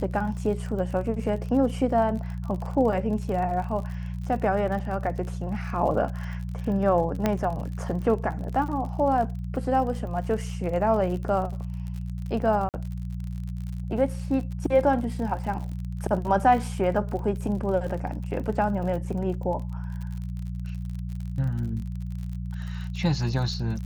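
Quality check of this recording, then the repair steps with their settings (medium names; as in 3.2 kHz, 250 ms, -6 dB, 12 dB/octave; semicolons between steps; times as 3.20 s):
crackle 51 per s -34 dBFS
hum 60 Hz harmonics 3 -32 dBFS
7.26 s: pop -10 dBFS
12.69–12.74 s: dropout 48 ms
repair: de-click; de-hum 60 Hz, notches 3; interpolate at 12.69 s, 48 ms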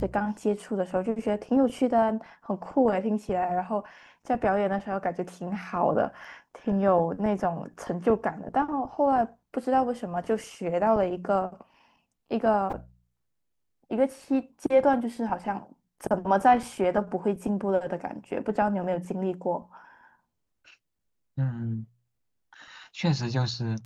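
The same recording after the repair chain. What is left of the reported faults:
7.26 s: pop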